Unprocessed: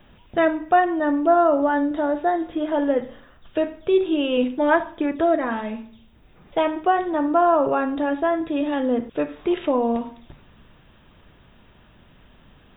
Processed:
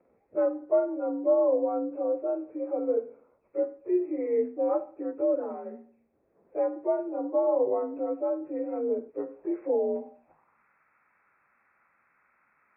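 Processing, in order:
partials spread apart or drawn together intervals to 87%
band-pass filter sweep 480 Hz → 1,500 Hz, 0:10.04–0:10.65
level −2 dB

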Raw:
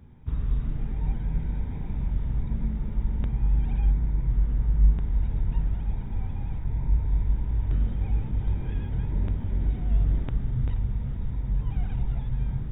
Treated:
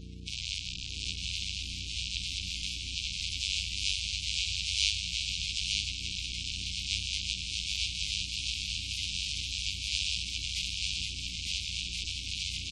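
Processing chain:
each half-wave held at its own peak
inverse Chebyshev high-pass filter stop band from 1,300 Hz, stop band 40 dB
mains hum 60 Hz, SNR 13 dB
spectral peaks only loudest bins 64
pitch-shifted copies added +7 semitones −4 dB
on a send: repeating echo 903 ms, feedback 25%, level −3.5 dB
on the sum: level +8.5 dB

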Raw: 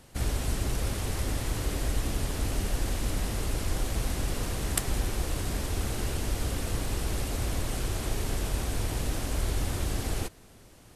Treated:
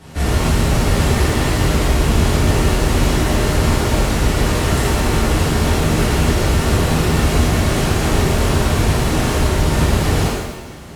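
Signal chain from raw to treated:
high-pass filter 41 Hz
high-shelf EQ 6,900 Hz −11 dB
boost into a limiter +23.5 dB
reverb with rising layers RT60 1 s, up +7 semitones, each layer −8 dB, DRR −9.5 dB
level −15 dB

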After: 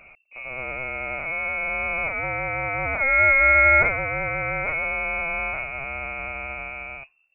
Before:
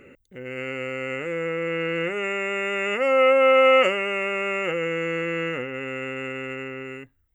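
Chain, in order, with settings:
voice inversion scrambler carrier 2,700 Hz

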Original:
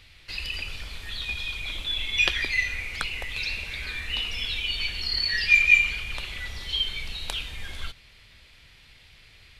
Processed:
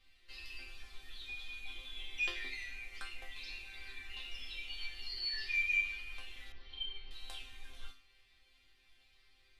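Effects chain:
resonators tuned to a chord C4 sus4, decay 0.37 s
0:06.52–0:07.11: high-frequency loss of the air 290 metres
level +4 dB

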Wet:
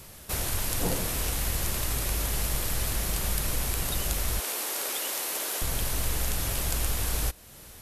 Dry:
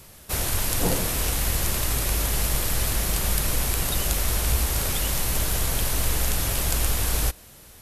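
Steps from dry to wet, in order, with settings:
0:04.40–0:05.62: high-pass filter 320 Hz 24 dB per octave
in parallel at +2 dB: downward compressor, threshold −36 dBFS, peak gain reduction 17 dB
on the sum: level −6.5 dB

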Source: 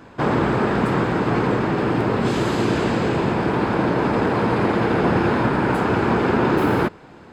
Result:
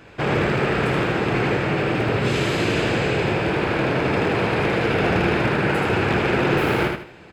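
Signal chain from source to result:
wave folding −11 dBFS
graphic EQ with 15 bands 250 Hz −8 dB, 1,000 Hz −7 dB, 2,500 Hz +7 dB
repeating echo 78 ms, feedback 31%, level −4 dB

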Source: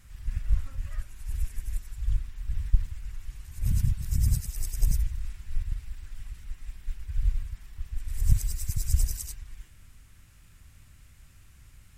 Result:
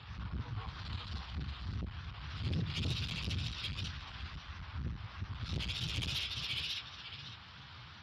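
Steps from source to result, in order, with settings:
partials spread apart or drawn together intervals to 76%
tilt shelving filter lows −4 dB, about 680 Hz
tape wow and flutter 140 cents
on a send: feedback echo with a high-pass in the loop 822 ms, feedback 20%, high-pass 310 Hz, level −4 dB
on the sum: time stretch by phase vocoder 0.67×
in parallel at −1.5 dB: downward compressor 16 to 1, threshold −42 dBFS, peak gain reduction 19 dB
on the sum: low-pass filter 3,400 Hz 12 dB per octave
soft clipping −36 dBFS, distortion −7 dB
level +6 dB
Speex 36 kbit/s 32,000 Hz

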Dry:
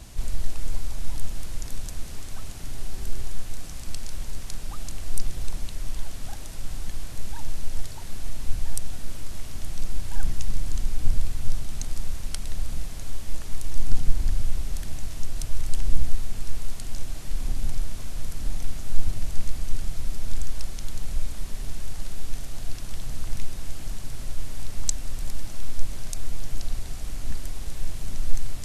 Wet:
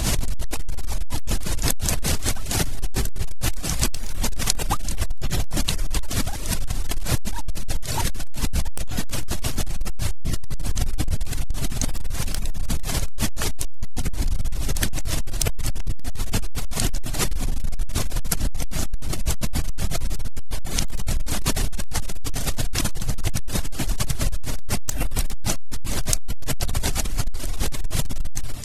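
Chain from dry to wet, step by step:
reverb reduction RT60 0.69 s
gain into a clipping stage and back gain 21.5 dB
background raised ahead of every attack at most 38 dB per second
level +6 dB

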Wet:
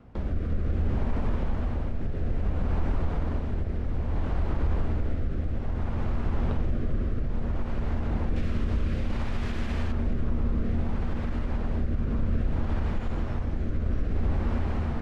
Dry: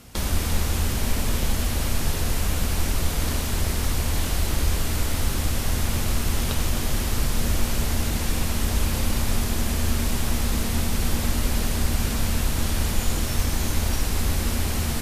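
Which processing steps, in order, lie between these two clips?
low-pass filter 1,200 Hz 12 dB per octave, from 0:08.36 2,200 Hz, from 0:09.92 1,300 Hz
brickwall limiter −17 dBFS, peak gain reduction 6.5 dB
rotating-speaker cabinet horn 0.6 Hz

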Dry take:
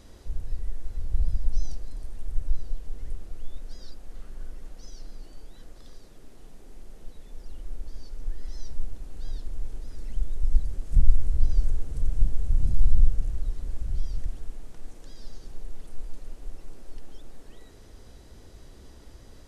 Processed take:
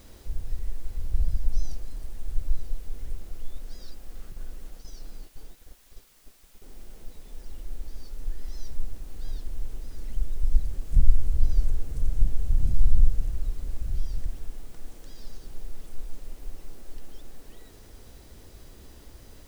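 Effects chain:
0:04.32–0:06.62: noise gate −38 dBFS, range −19 dB
background noise white −60 dBFS

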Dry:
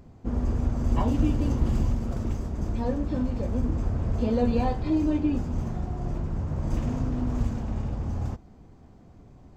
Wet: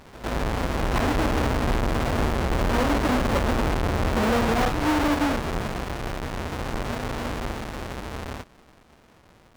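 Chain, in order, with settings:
each half-wave held at its own peak
source passing by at 0:02.98, 11 m/s, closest 9.8 metres
high-shelf EQ 4,200 Hz +8.5 dB
brickwall limiter −17 dBFS, peak gain reduction 9 dB
mid-hump overdrive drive 14 dB, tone 1,900 Hz, clips at −17 dBFS
on a send: backwards echo 110 ms −14.5 dB
on the sum: level +8 dB

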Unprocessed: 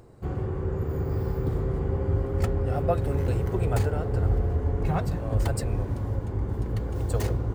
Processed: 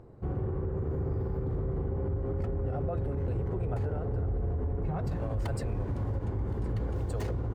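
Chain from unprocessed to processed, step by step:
low-pass filter 1,000 Hz 6 dB per octave, from 0:05.07 3,600 Hz
brickwall limiter −24.5 dBFS, peak gain reduction 11.5 dB
single-tap delay 1,067 ms −21 dB

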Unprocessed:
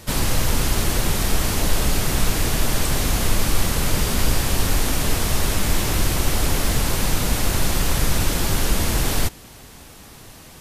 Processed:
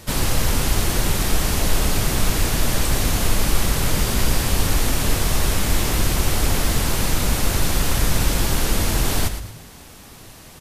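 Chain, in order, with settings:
echo with shifted repeats 114 ms, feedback 35%, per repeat −57 Hz, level −10 dB

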